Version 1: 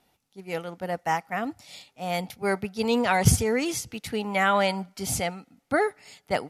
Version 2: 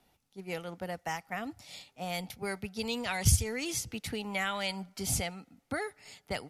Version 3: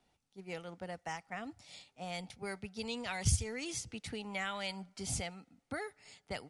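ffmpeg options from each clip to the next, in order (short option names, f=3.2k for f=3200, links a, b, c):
-filter_complex "[0:a]lowshelf=f=89:g=7.5,acrossover=split=100|2200[a][b][c];[b]acompressor=threshold=-32dB:ratio=6[d];[a][d][c]amix=inputs=3:normalize=0,volume=-2.5dB"
-af "aresample=22050,aresample=44100,volume=-5.5dB"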